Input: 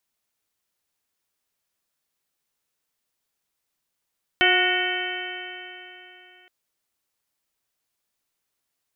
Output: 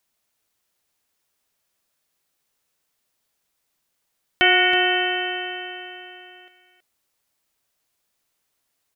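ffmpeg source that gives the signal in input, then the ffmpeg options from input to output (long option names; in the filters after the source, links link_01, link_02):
-f lavfi -i "aevalsrc='0.0668*pow(10,-3*t/3.28)*sin(2*PI*361.36*t)+0.0668*pow(10,-3*t/3.28)*sin(2*PI*724.88*t)+0.0133*pow(10,-3*t/3.28)*sin(2*PI*1092.7*t)+0.0794*pow(10,-3*t/3.28)*sin(2*PI*1466.92*t)+0.0944*pow(10,-3*t/3.28)*sin(2*PI*1849.57*t)+0.0841*pow(10,-3*t/3.28)*sin(2*PI*2242.62*t)+0.0531*pow(10,-3*t/3.28)*sin(2*PI*2647.93*t)+0.0944*pow(10,-3*t/3.28)*sin(2*PI*3067.27*t)':duration=2.07:sample_rate=44100"
-filter_complex "[0:a]equalizer=frequency=630:width_type=o:width=0.43:gain=2,asplit=2[link_01][link_02];[link_02]alimiter=limit=-15dB:level=0:latency=1:release=284,volume=-2.5dB[link_03];[link_01][link_03]amix=inputs=2:normalize=0,aecho=1:1:324:0.282"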